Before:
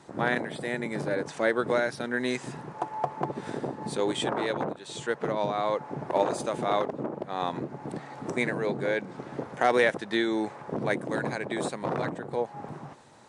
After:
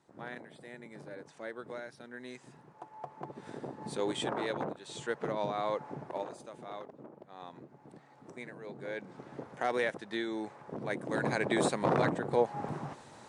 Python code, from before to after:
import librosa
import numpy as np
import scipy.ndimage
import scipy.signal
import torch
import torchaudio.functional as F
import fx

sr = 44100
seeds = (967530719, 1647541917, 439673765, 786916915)

y = fx.gain(x, sr, db=fx.line((2.79, -17.0), (4.03, -5.5), (5.9, -5.5), (6.37, -17.5), (8.6, -17.5), (9.06, -9.0), (10.86, -9.0), (11.41, 2.0)))